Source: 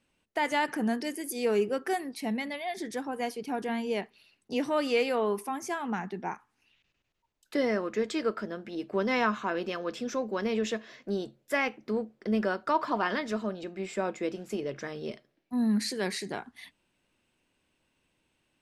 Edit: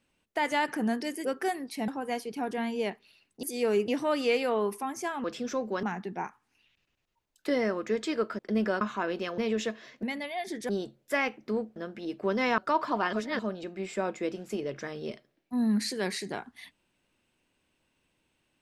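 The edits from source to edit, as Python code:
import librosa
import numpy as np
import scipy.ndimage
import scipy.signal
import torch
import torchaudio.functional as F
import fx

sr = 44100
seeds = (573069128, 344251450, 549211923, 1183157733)

y = fx.edit(x, sr, fx.move(start_s=1.25, length_s=0.45, to_s=4.54),
    fx.move(start_s=2.33, length_s=0.66, to_s=11.09),
    fx.swap(start_s=8.46, length_s=0.82, other_s=12.16, other_length_s=0.42),
    fx.move(start_s=9.85, length_s=0.59, to_s=5.9),
    fx.reverse_span(start_s=13.13, length_s=0.26), tone=tone)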